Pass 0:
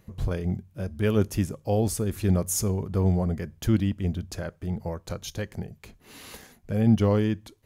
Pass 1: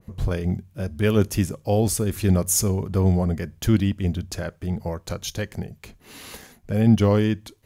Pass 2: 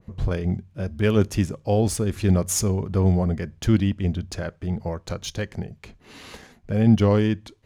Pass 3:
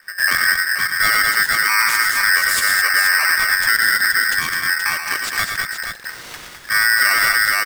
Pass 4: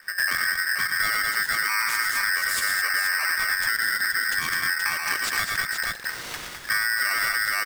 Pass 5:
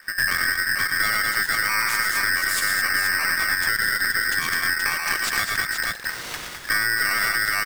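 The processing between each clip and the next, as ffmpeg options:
-af "adynamicequalizer=threshold=0.00631:dfrequency=1600:dqfactor=0.7:tfrequency=1600:tqfactor=0.7:attack=5:release=100:ratio=0.375:range=1.5:mode=boostabove:tftype=highshelf,volume=1.5"
-af "adynamicsmooth=sensitivity=3.5:basefreq=6300"
-filter_complex "[0:a]asplit=2[s0][s1];[s1]aecho=0:1:98|115|207|476:0.266|0.447|0.531|0.447[s2];[s0][s2]amix=inputs=2:normalize=0,alimiter=level_in=4.73:limit=0.891:release=50:level=0:latency=1,aeval=exprs='val(0)*sgn(sin(2*PI*1700*n/s))':c=same,volume=0.422"
-af "acompressor=threshold=0.0794:ratio=6"
-af "aeval=exprs='0.224*(cos(1*acos(clip(val(0)/0.224,-1,1)))-cos(1*PI/2))+0.0355*(cos(2*acos(clip(val(0)/0.224,-1,1)))-cos(2*PI/2))':c=same,volume=1.26"

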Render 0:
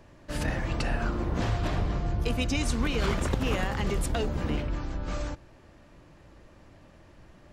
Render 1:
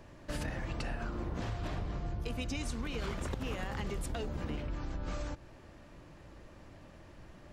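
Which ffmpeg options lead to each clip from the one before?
-af "acompressor=threshold=0.02:ratio=6"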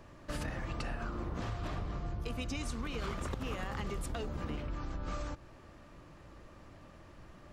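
-af "equalizer=f=1200:t=o:w=0.25:g=6.5,volume=0.891"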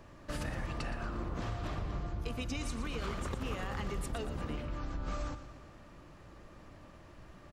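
-af "aecho=1:1:118|236|354|472|590|708:0.266|0.146|0.0805|0.0443|0.0243|0.0134"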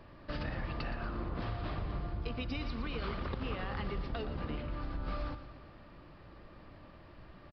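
-af "aresample=11025,aresample=44100"

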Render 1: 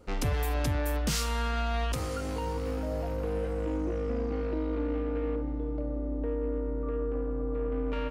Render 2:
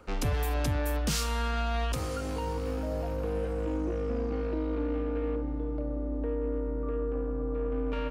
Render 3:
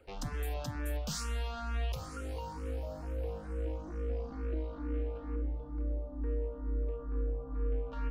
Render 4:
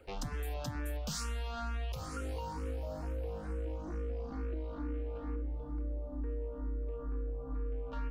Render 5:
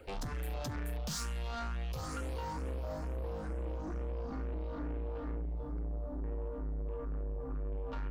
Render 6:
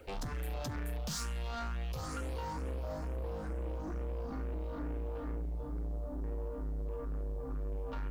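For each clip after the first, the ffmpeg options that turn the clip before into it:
-filter_complex "[0:a]acrossover=split=230|1100|2000[s0][s1][s2][s3];[s2]acompressor=mode=upward:threshold=0.002:ratio=2.5[s4];[s0][s1][s4][s3]amix=inputs=4:normalize=0,bandreject=f=2000:w=18"
-filter_complex "[0:a]asubboost=boost=4:cutoff=65,asplit=2[s0][s1];[s1]afreqshift=2.2[s2];[s0][s2]amix=inputs=2:normalize=1,volume=0.531"
-af "acompressor=threshold=0.0141:ratio=6,volume=1.41"
-af "asoftclip=type=tanh:threshold=0.0119,volume=1.68"
-af "acrusher=bits=11:mix=0:aa=0.000001"

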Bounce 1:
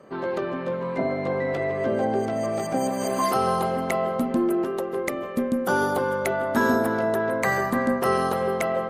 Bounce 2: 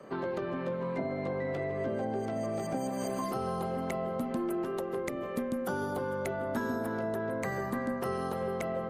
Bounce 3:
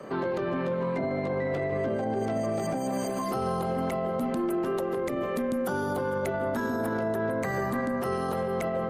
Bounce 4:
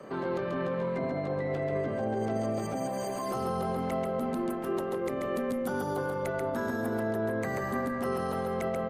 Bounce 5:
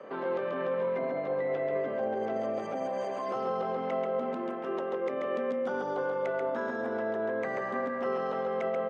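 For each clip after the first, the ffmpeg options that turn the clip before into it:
-filter_complex "[0:a]acrossover=split=170|510[s0][s1][s2];[s0]acompressor=threshold=0.00794:ratio=4[s3];[s1]acompressor=threshold=0.0141:ratio=4[s4];[s2]acompressor=threshold=0.0112:ratio=4[s5];[s3][s4][s5]amix=inputs=3:normalize=0"
-af "alimiter=level_in=1.78:limit=0.0631:level=0:latency=1:release=21,volume=0.562,volume=2.37"
-af "aecho=1:1:136:0.631,volume=0.631"
-af "highpass=290,equalizer=f=340:t=q:w=4:g=-4,equalizer=f=510:t=q:w=4:g=4,equalizer=f=4300:t=q:w=4:g=-9,lowpass=f=4800:w=0.5412,lowpass=f=4800:w=1.3066"

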